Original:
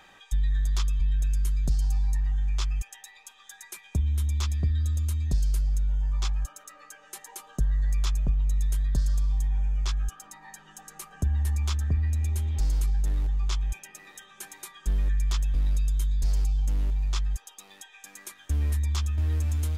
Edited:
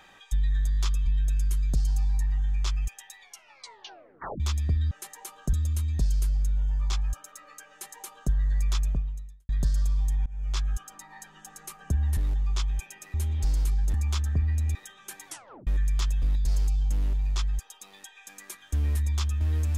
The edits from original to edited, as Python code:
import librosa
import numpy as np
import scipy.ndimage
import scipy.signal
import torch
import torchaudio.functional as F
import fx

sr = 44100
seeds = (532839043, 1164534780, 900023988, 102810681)

y = fx.edit(x, sr, fx.stutter(start_s=0.7, slice_s=0.02, count=4),
    fx.tape_stop(start_s=3.13, length_s=1.21),
    fx.duplicate(start_s=7.02, length_s=0.62, to_s=4.85),
    fx.fade_out_span(start_s=8.2, length_s=0.61, curve='qua'),
    fx.fade_in_from(start_s=9.58, length_s=0.31, floor_db=-22.5),
    fx.swap(start_s=11.49, length_s=0.81, other_s=13.1, other_length_s=0.97),
    fx.tape_stop(start_s=14.59, length_s=0.4),
    fx.cut(start_s=15.68, length_s=0.45), tone=tone)